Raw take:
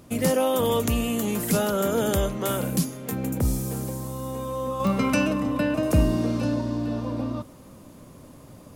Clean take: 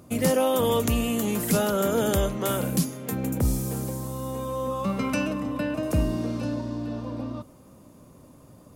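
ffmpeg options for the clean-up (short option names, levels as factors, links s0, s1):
-af "adeclick=t=4,agate=range=0.0891:threshold=0.0126,asetnsamples=n=441:p=0,asendcmd='4.8 volume volume -4dB',volume=1"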